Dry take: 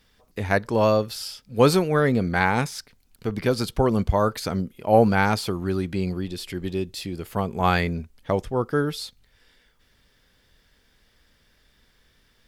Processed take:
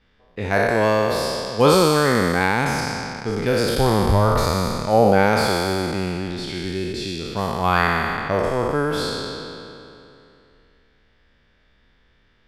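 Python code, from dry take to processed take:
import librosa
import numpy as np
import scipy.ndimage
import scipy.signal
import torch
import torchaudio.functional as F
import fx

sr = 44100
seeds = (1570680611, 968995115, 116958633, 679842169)

y = fx.spec_trails(x, sr, decay_s=2.81)
y = fx.env_lowpass(y, sr, base_hz=2900.0, full_db=-16.0)
y = y * 10.0 ** (-1.0 / 20.0)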